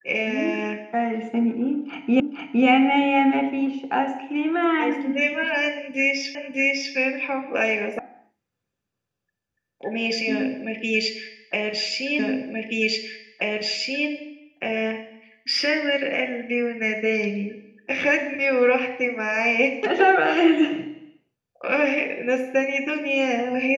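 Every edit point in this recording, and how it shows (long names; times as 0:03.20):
0:02.20: the same again, the last 0.46 s
0:06.35: the same again, the last 0.6 s
0:07.99: cut off before it has died away
0:12.19: the same again, the last 1.88 s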